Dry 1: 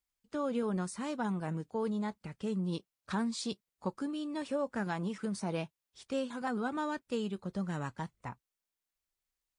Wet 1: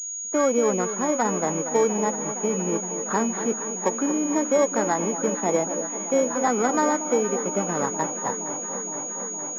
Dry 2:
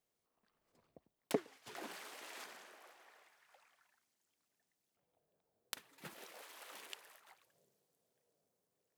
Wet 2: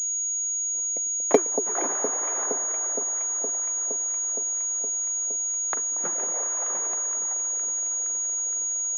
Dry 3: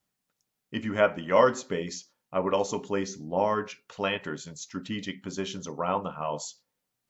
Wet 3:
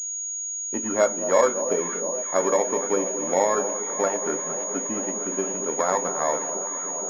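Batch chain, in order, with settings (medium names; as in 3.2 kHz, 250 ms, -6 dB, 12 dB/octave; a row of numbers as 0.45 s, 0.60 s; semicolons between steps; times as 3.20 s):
bit-reversed sample order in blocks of 16 samples; compression 2:1, threshold -31 dBFS; three-band isolator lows -22 dB, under 280 Hz, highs -22 dB, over 2.1 kHz; on a send: echo whose repeats swap between lows and highs 233 ms, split 970 Hz, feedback 88%, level -10 dB; on the sum: class-D stage that switches slowly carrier 6.7 kHz; normalise loudness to -24 LUFS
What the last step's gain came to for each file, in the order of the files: +17.0 dB, +21.5 dB, +11.5 dB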